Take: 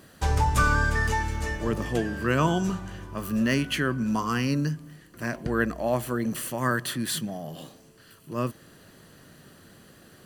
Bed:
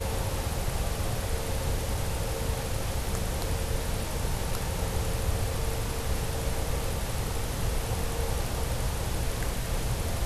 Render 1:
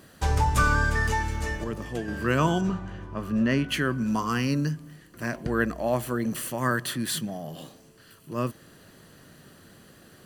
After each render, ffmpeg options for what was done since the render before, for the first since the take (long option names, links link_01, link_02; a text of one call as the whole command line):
ffmpeg -i in.wav -filter_complex "[0:a]asettb=1/sr,asplit=3[link_01][link_02][link_03];[link_01]atrim=end=2.614[link_04];[link_02]atrim=start=2.61:end=3.69,asetpts=PTS-STARTPTS,afade=type=in:duration=0.004:curve=qsin,afade=type=out:start_time=1.076:duration=0.004:curve=qsin,aemphasis=mode=reproduction:type=75fm[link_05];[link_03]atrim=start=3.686[link_06];[link_04][link_05]acrossfade=duration=0.004:curve1=hsin:curve2=qsin[link_07];[link_07][link_06]acrossfade=duration=0.004:curve1=qsin:curve2=hsin,asplit=3[link_08][link_09][link_10];[link_08]atrim=end=1.642[link_11];[link_09]atrim=start=1.638:end=2.082,asetpts=PTS-STARTPTS,volume=-5.5dB[link_12];[link_10]atrim=start=2.078[link_13];[link_11][link_12]acrossfade=duration=0.004:curve1=hsin:curve2=hsin[link_14];[link_14][link_13]acrossfade=duration=0.004:curve1=hsin:curve2=hsin" out.wav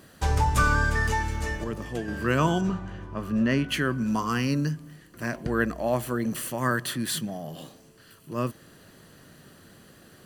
ffmpeg -i in.wav -af anull out.wav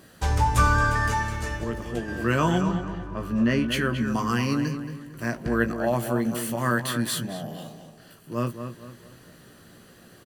ffmpeg -i in.wav -filter_complex "[0:a]asplit=2[link_01][link_02];[link_02]adelay=17,volume=-7.5dB[link_03];[link_01][link_03]amix=inputs=2:normalize=0,asplit=2[link_04][link_05];[link_05]adelay=225,lowpass=frequency=2600:poles=1,volume=-8dB,asplit=2[link_06][link_07];[link_07]adelay=225,lowpass=frequency=2600:poles=1,volume=0.38,asplit=2[link_08][link_09];[link_09]adelay=225,lowpass=frequency=2600:poles=1,volume=0.38,asplit=2[link_10][link_11];[link_11]adelay=225,lowpass=frequency=2600:poles=1,volume=0.38[link_12];[link_04][link_06][link_08][link_10][link_12]amix=inputs=5:normalize=0" out.wav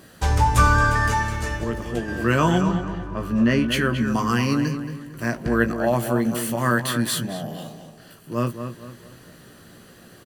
ffmpeg -i in.wav -af "volume=3.5dB" out.wav